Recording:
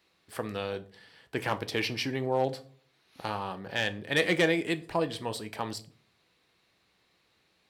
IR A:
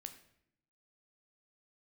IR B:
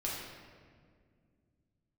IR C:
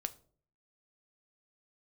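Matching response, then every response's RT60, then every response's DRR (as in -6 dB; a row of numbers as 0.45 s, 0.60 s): C; 0.75 s, 2.0 s, 0.50 s; 7.0 dB, -5.5 dB, 10.0 dB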